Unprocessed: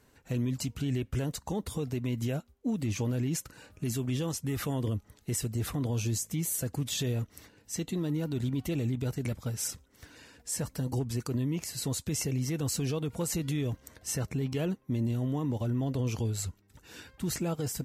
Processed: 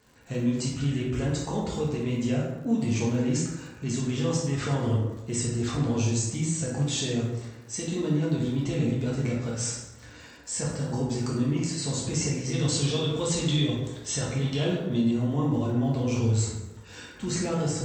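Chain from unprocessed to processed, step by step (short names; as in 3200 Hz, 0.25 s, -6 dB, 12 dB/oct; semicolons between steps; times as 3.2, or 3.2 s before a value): brick-wall FIR low-pass 8300 Hz; low shelf 91 Hz -7 dB; plate-style reverb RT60 1.1 s, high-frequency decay 0.55×, DRR -5 dB; crackle 210/s -49 dBFS; 12.53–15.11 bell 3500 Hz +14 dB 0.34 oct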